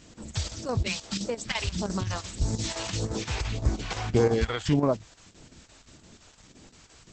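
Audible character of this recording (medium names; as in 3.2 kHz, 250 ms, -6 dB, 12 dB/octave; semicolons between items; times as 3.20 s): phasing stages 2, 1.7 Hz, lowest notch 190–2900 Hz; a quantiser's noise floor 10-bit, dither triangular; chopped level 5.8 Hz, depth 60%, duty 80%; Opus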